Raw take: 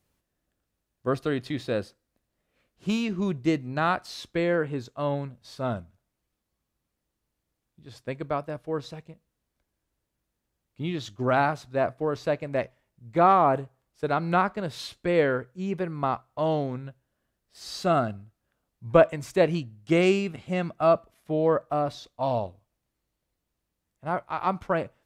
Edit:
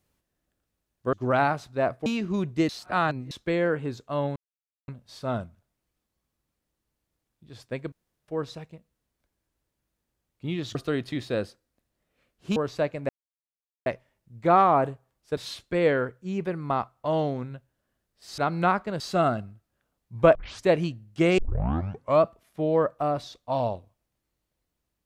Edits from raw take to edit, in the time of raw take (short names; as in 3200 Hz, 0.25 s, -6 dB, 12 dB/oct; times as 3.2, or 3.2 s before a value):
1.13–2.94 swap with 11.11–12.04
3.57–4.19 reverse
5.24 insert silence 0.52 s
8.28–8.64 room tone
12.57 insert silence 0.77 s
14.08–14.7 move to 17.71
19.06 tape start 0.30 s
20.09 tape start 0.85 s